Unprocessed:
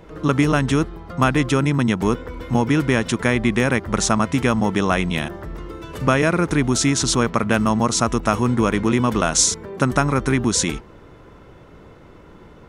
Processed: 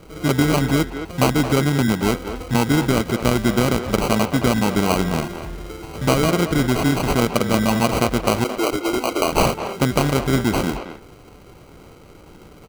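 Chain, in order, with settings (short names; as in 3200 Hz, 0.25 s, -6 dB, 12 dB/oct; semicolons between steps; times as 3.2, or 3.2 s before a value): 8.44–9.32 steep high-pass 270 Hz 96 dB/oct; sample-and-hold 25×; speakerphone echo 0.22 s, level -8 dB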